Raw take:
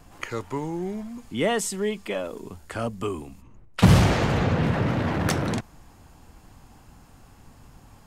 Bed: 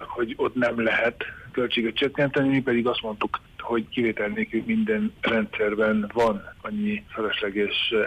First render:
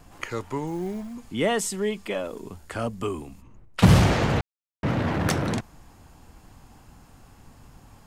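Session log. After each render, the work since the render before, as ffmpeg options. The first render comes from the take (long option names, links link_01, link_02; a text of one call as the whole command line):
ffmpeg -i in.wav -filter_complex "[0:a]asettb=1/sr,asplit=3[link_01][link_02][link_03];[link_01]atrim=end=0.674[link_04];[link_02]atrim=start=0.67:end=1.14,asetpts=PTS-STARTPTS,afade=type=in:duration=0.004:curve=qsin,afade=type=out:start_time=0.466:duration=0.004:curve=qsin,acrusher=bits=7:mode=log:mix=0:aa=0.000001[link_05];[link_03]atrim=start=1.136[link_06];[link_04][link_05]acrossfade=duration=0.004:curve1=hsin:curve2=qsin[link_07];[link_07][link_06]acrossfade=duration=0.004:curve1=qsin:curve2=hsin,asplit=3[link_08][link_09][link_10];[link_08]atrim=end=4.41,asetpts=PTS-STARTPTS,afade=type=out:start_time=4.406:duration=0.004:curve=hsin[link_11];[link_09]atrim=start=4.41:end=4.83,asetpts=PTS-STARTPTS,volume=0[link_12];[link_10]atrim=start=4.83,asetpts=PTS-STARTPTS,afade=type=in:duration=0.004:curve=hsin[link_13];[link_11][link_12][link_13]concat=n=3:v=0:a=1" out.wav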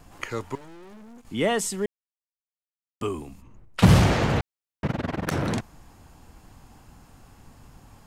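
ffmpeg -i in.wav -filter_complex "[0:a]asettb=1/sr,asplit=3[link_01][link_02][link_03];[link_01]atrim=end=0.554[link_04];[link_02]atrim=start=0.55:end=1.27,asetpts=PTS-STARTPTS,afade=type=in:duration=0.004:curve=qsin,afade=type=out:start_time=0.716:duration=0.004:curve=qsin,aeval=exprs='(tanh(178*val(0)+0.7)-tanh(0.7))/178':channel_layout=same[link_05];[link_03]atrim=start=1.266[link_06];[link_04][link_05]acrossfade=duration=0.004:curve1=hsin:curve2=qsin[link_07];[link_07][link_06]acrossfade=duration=0.004:curve1=qsin:curve2=hsin,asplit=3[link_08][link_09][link_10];[link_08]afade=type=out:start_time=4.86:duration=0.02[link_11];[link_09]tremolo=f=21:d=0.974,afade=type=in:start_time=4.86:duration=0.02,afade=type=out:start_time=5.31:duration=0.02[link_12];[link_10]afade=type=in:start_time=5.31:duration=0.02[link_13];[link_11][link_12][link_13]amix=inputs=3:normalize=0,asplit=3[link_14][link_15][link_16];[link_14]atrim=end=1.86,asetpts=PTS-STARTPTS,afade=type=out:start_time=1.856:duration=0.004:curve=hsin[link_17];[link_15]atrim=start=1.86:end=3.01,asetpts=PTS-STARTPTS,volume=0[link_18];[link_16]atrim=start=3.01,asetpts=PTS-STARTPTS,afade=type=in:duration=0.004:curve=hsin[link_19];[link_17][link_18][link_19]concat=n=3:v=0:a=1" out.wav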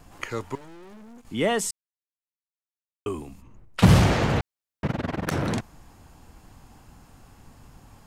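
ffmpeg -i in.wav -filter_complex "[0:a]asplit=3[link_01][link_02][link_03];[link_01]atrim=end=1.71,asetpts=PTS-STARTPTS,afade=type=out:start_time=1.706:duration=0.004:curve=hsin[link_04];[link_02]atrim=start=1.71:end=3.06,asetpts=PTS-STARTPTS,volume=0[link_05];[link_03]atrim=start=3.06,asetpts=PTS-STARTPTS,afade=type=in:duration=0.004:curve=hsin[link_06];[link_04][link_05][link_06]concat=n=3:v=0:a=1" out.wav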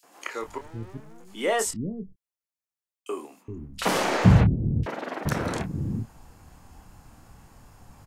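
ffmpeg -i in.wav -filter_complex "[0:a]asplit=2[link_01][link_02];[link_02]adelay=27,volume=-9dB[link_03];[link_01][link_03]amix=inputs=2:normalize=0,acrossover=split=290|3300[link_04][link_05][link_06];[link_05]adelay=30[link_07];[link_04]adelay=420[link_08];[link_08][link_07][link_06]amix=inputs=3:normalize=0" out.wav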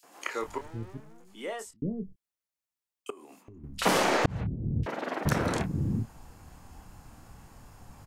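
ffmpeg -i in.wav -filter_complex "[0:a]asettb=1/sr,asplit=3[link_01][link_02][link_03];[link_01]atrim=end=3.104[link_04];[link_02]atrim=start=3.1:end=3.64,asetpts=PTS-STARTPTS,afade=type=in:duration=0.004:curve=qsin,afade=type=out:start_time=0.536:duration=0.004:curve=qsin,acompressor=threshold=-45dB:ratio=16:attack=3.2:release=140:knee=1:detection=peak[link_05];[link_03]atrim=start=3.636[link_06];[link_04][link_05]acrossfade=duration=0.004:curve1=hsin:curve2=qsin[link_07];[link_07][link_06]acrossfade=duration=0.004:curve1=qsin:curve2=hsin,asplit=3[link_08][link_09][link_10];[link_08]atrim=end=1.82,asetpts=PTS-STARTPTS,afade=type=out:start_time=0.6:duration=1.22[link_11];[link_09]atrim=start=1.82:end=4.26,asetpts=PTS-STARTPTS,afade=type=in:duration=0.004:curve=hsin,afade=type=out:start_time=2.436:duration=0.004:curve=hsin[link_12];[link_10]atrim=start=4.26,asetpts=PTS-STARTPTS,afade=type=in:duration=0.82[link_13];[link_11][link_12][link_13]concat=n=3:v=0:a=1" out.wav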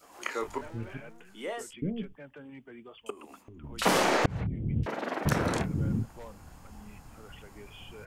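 ffmpeg -i in.wav -i bed.wav -filter_complex "[1:a]volume=-26dB[link_01];[0:a][link_01]amix=inputs=2:normalize=0" out.wav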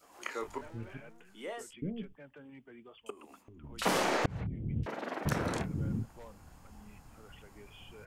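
ffmpeg -i in.wav -af "volume=-5dB" out.wav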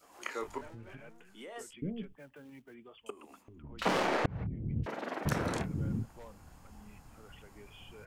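ffmpeg -i in.wav -filter_complex "[0:a]asettb=1/sr,asplit=3[link_01][link_02][link_03];[link_01]atrim=end=0.734[link_04];[link_02]atrim=start=0.73:end=1.56,asetpts=PTS-STARTPTS,afade=type=in:duration=0.004:curve=qsin,afade=type=out:start_time=0.826:duration=0.004:curve=qsin,acompressor=threshold=-43dB:ratio=6:attack=3.2:release=140:knee=1:detection=peak[link_05];[link_03]atrim=start=1.556[link_06];[link_04][link_05]acrossfade=duration=0.004:curve1=hsin:curve2=qsin[link_07];[link_07][link_06]acrossfade=duration=0.004:curve1=qsin:curve2=hsin,asplit=3[link_08][link_09][link_10];[link_08]afade=type=out:start_time=2.16:duration=0.02[link_11];[link_09]acrusher=bits=5:mode=log:mix=0:aa=0.000001,afade=type=in:start_time=2.16:duration=0.02,afade=type=out:start_time=2.73:duration=0.02[link_12];[link_10]afade=type=in:start_time=2.73:duration=0.02[link_13];[link_11][link_12][link_13]amix=inputs=3:normalize=0,asettb=1/sr,asplit=3[link_14][link_15][link_16];[link_14]atrim=end=3.624[link_17];[link_15]atrim=start=3.62:end=4.84,asetpts=PTS-STARTPTS,afade=type=in:duration=0.004:curve=qsin,afade=type=out:start_time=1.216:duration=0.004:curve=qsin,adynamicsmooth=sensitivity=6:basefreq=2400[link_18];[link_16]atrim=start=4.836[link_19];[link_17][link_18]acrossfade=duration=0.004:curve1=hsin:curve2=qsin[link_20];[link_20][link_19]acrossfade=duration=0.004:curve1=qsin:curve2=hsin" out.wav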